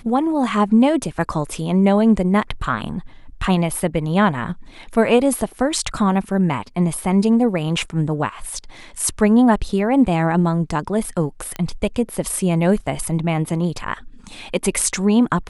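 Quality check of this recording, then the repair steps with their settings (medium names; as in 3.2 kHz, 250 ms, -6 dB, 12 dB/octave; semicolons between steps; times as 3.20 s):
11.56 s: pop -13 dBFS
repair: de-click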